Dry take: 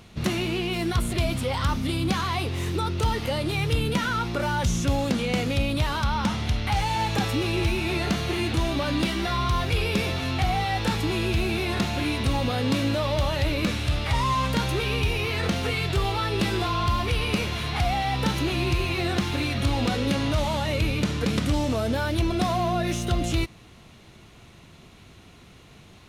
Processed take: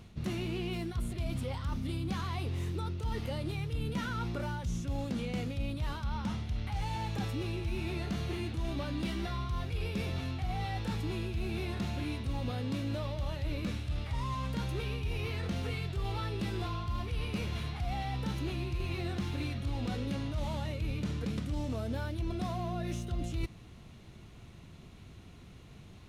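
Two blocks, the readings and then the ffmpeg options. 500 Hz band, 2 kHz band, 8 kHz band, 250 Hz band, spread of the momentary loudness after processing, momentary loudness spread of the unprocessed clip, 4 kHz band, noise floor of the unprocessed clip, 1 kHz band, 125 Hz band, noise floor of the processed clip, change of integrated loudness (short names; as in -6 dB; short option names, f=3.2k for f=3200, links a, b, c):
-12.5 dB, -14.5 dB, -15.0 dB, -10.0 dB, 2 LU, 2 LU, -15.0 dB, -50 dBFS, -14.0 dB, -8.0 dB, -52 dBFS, -10.5 dB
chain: -af "lowshelf=f=280:g=9,areverse,acompressor=threshold=-24dB:ratio=5,areverse,volume=-8dB"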